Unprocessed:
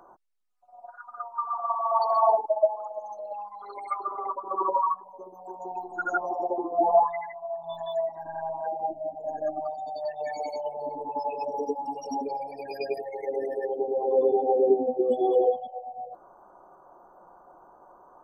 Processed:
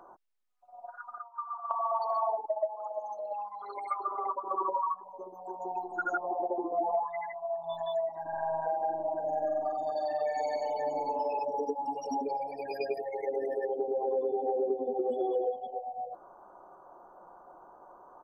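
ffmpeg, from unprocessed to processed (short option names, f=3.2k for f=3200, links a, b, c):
-filter_complex "[0:a]asettb=1/sr,asplit=3[a][b][c];[a]atrim=end=1.184[d];[b]atrim=start=1.18:end=1.71,asetpts=PTS-STARTPTS,afade=t=in:d=0.004:c=qsin,afade=t=out:st=0.526:d=0.004:c=qsin,bandpass=f=2.2k:t=q:w=1.6[e];[c]atrim=start=1.706[f];[d][e]acrossfade=d=0.004:c1=hsin:c2=qsin[g];[g][f]acrossfade=d=0.004:c1=qsin:c2=hsin,asettb=1/sr,asplit=3[h][i][j];[h]atrim=end=2.754[k];[i]atrim=start=2.75:end=4.59,asetpts=PTS-STARTPTS,afade=t=in:d=0.004:c=qsin,afade=t=out:st=1.836:d=0.004:c=qsin,highpass=f=160:p=1[l];[j]atrim=start=4.586[m];[k][l]acrossfade=d=0.004:c1=hsin:c2=qsin[n];[n][m]acrossfade=d=0.004:c1=qsin:c2=hsin,asettb=1/sr,asplit=3[o][p][q];[o]atrim=end=6.174[r];[p]atrim=start=6.17:end=6.72,asetpts=PTS-STARTPTS,afade=t=in:d=0.004:c=qsin,afade=t=out:st=0.546:d=0.004:c=qsin,lowpass=1.1k[s];[q]atrim=start=6.716[t];[r][s]acrossfade=d=0.004:c1=hsin:c2=qsin[u];[u][t]acrossfade=d=0.004:c1=qsin:c2=hsin,asettb=1/sr,asplit=3[v][w][x];[v]atrim=end=8.284[y];[w]atrim=start=8.28:end=11.39,asetpts=PTS-STARTPTS,afade=t=in:d=0.004:c=qsin,afade=t=out:st=3.106:d=0.004:c=qsin,aecho=1:1:45|95|236|532|575:0.668|0.668|0.596|0.473|0.141,atrim=end_sample=137151[z];[x]atrim=start=11.386[aa];[y][z]acrossfade=d=0.004:c1=hsin:c2=qsin[ab];[ab][aa]acrossfade=d=0.004:c1=qsin:c2=hsin,asplit=2[ac][ad];[ad]afade=t=in:st=13.88:d=0.01,afade=t=out:st=14.65:d=0.01,aecho=0:1:570|1140:0.375837|0.0563756[ae];[ac][ae]amix=inputs=2:normalize=0,bass=f=250:g=-3,treble=f=4k:g=-4,acompressor=threshold=-28dB:ratio=5"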